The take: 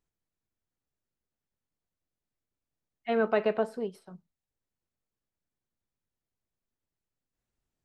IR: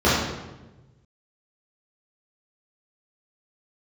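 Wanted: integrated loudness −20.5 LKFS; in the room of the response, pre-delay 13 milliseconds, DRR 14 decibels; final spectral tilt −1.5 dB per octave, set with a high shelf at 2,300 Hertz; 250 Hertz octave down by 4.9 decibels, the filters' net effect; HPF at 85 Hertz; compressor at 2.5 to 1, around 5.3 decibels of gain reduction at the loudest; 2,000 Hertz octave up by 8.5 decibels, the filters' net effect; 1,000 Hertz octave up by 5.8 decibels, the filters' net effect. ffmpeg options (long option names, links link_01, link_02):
-filter_complex "[0:a]highpass=85,equalizer=frequency=250:width_type=o:gain=-6,equalizer=frequency=1000:width_type=o:gain=6.5,equalizer=frequency=2000:width_type=o:gain=5,highshelf=frequency=2300:gain=8,acompressor=threshold=-25dB:ratio=2.5,asplit=2[link_01][link_02];[1:a]atrim=start_sample=2205,adelay=13[link_03];[link_02][link_03]afir=irnorm=-1:irlink=0,volume=-36dB[link_04];[link_01][link_04]amix=inputs=2:normalize=0,volume=10.5dB"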